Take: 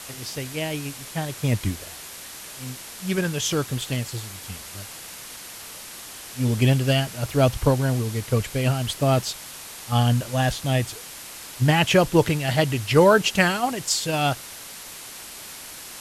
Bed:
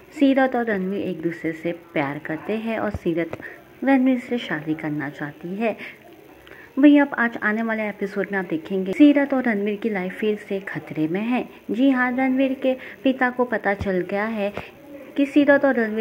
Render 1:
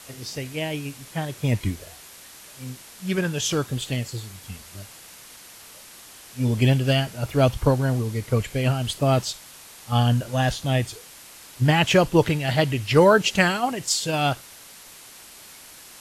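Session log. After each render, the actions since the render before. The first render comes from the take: noise print and reduce 6 dB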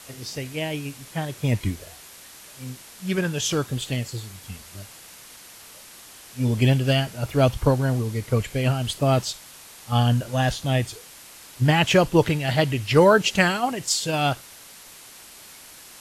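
nothing audible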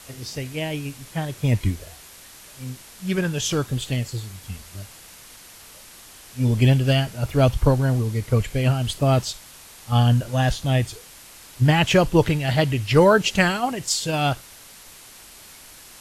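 low shelf 75 Hz +11 dB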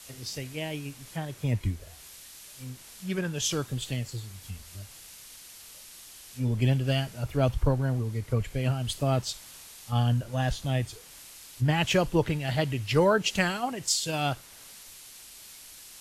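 compressor 1.5:1, threshold -38 dBFS, peak gain reduction 10 dB; three-band expander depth 40%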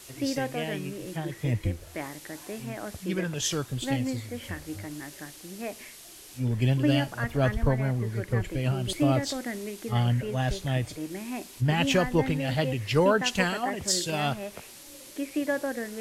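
add bed -13 dB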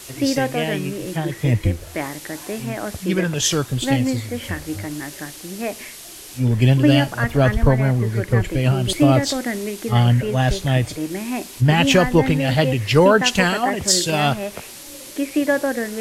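gain +9.5 dB; limiter -3 dBFS, peak gain reduction 2.5 dB

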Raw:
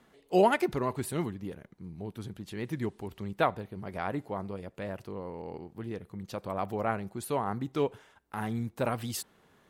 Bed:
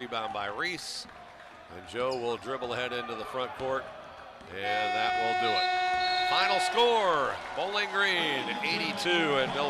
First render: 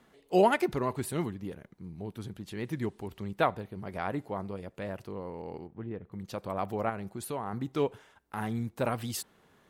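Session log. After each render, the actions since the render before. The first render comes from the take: 5.67–6.12 air absorption 500 m; 6.89–7.53 compressor 2:1, threshold -34 dBFS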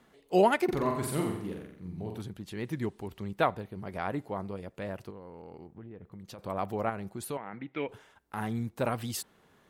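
0.64–2.22 flutter echo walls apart 7.6 m, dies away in 0.69 s; 5.1–6.39 compressor, threshold -42 dBFS; 7.37–7.89 speaker cabinet 240–3000 Hz, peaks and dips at 240 Hz -4 dB, 400 Hz -9 dB, 750 Hz -6 dB, 1100 Hz -9 dB, 2200 Hz +10 dB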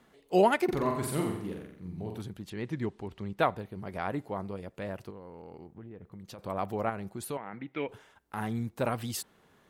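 2.5–3.39 air absorption 62 m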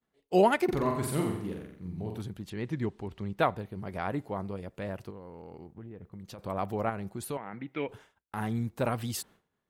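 expander -50 dBFS; low shelf 150 Hz +4 dB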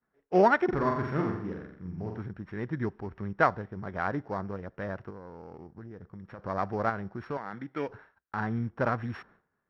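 sample sorter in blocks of 8 samples; synth low-pass 1600 Hz, resonance Q 2.8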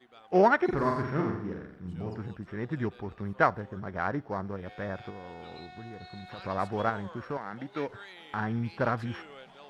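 add bed -21.5 dB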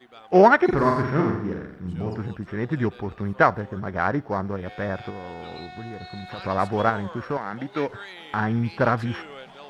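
gain +7.5 dB; limiter -3 dBFS, peak gain reduction 2.5 dB

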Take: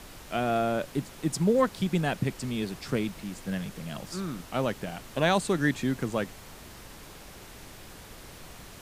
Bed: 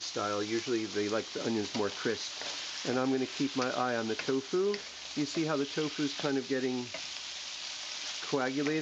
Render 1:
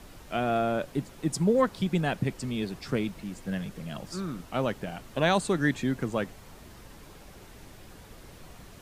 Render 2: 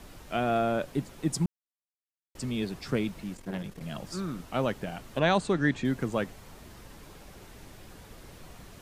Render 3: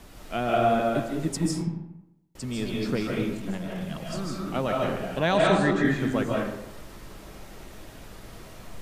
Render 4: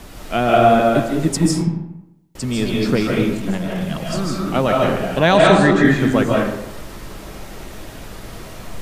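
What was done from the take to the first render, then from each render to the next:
denoiser 6 dB, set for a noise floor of -47 dBFS
1.46–2.35 mute; 3.33–3.81 core saturation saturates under 540 Hz; 5.19–5.85 air absorption 63 m
digital reverb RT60 0.9 s, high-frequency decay 0.6×, pre-delay 0.11 s, DRR -2.5 dB
gain +10 dB; limiter -1 dBFS, peak gain reduction 1.5 dB

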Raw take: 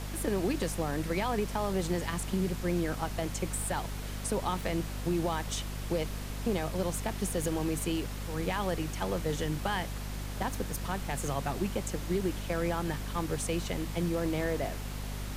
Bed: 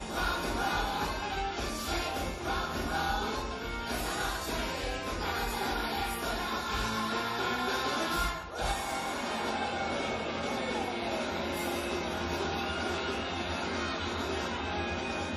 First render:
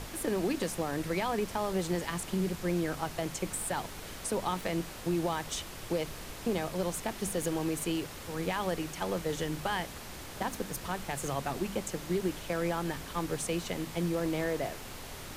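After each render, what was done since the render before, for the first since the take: notches 50/100/150/200/250 Hz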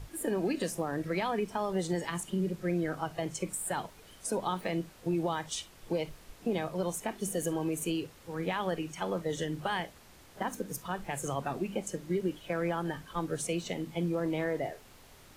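noise print and reduce 12 dB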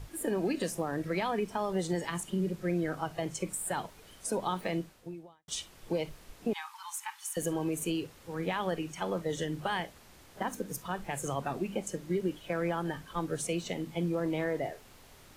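4.76–5.48 fade out quadratic; 6.53–7.37 brick-wall FIR high-pass 790 Hz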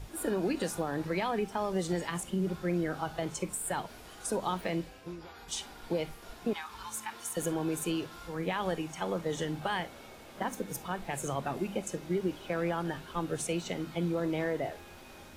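add bed -18 dB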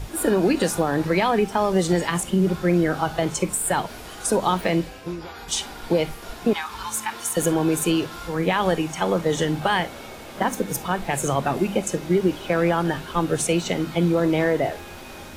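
gain +11.5 dB

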